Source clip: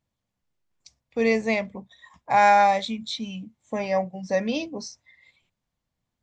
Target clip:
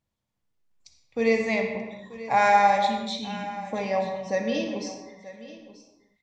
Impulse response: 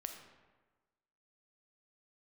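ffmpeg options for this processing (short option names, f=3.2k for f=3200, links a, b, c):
-filter_complex "[0:a]aecho=1:1:934:0.15[a];[1:a]atrim=start_sample=2205,afade=t=out:st=0.36:d=0.01,atrim=end_sample=16317,asetrate=31311,aresample=44100[b];[a][b]afir=irnorm=-1:irlink=0"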